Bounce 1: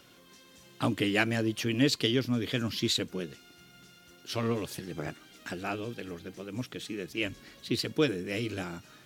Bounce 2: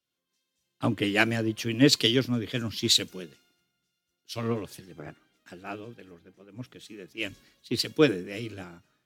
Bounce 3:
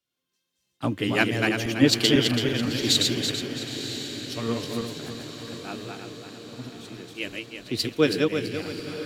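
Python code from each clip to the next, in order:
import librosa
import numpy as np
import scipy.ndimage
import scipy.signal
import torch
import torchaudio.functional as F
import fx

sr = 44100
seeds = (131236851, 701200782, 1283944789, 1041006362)

y1 = fx.band_widen(x, sr, depth_pct=100)
y2 = fx.reverse_delay_fb(y1, sr, ms=166, feedback_pct=60, wet_db=-3.0)
y2 = fx.echo_diffused(y2, sr, ms=973, feedback_pct=56, wet_db=-11)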